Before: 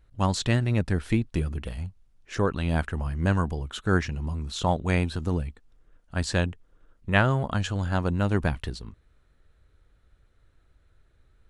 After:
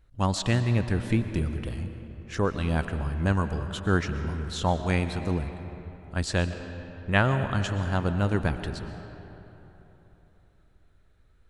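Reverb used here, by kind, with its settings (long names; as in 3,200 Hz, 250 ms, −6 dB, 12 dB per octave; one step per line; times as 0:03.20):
comb and all-pass reverb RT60 3.6 s, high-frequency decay 0.55×, pre-delay 80 ms, DRR 9 dB
level −1 dB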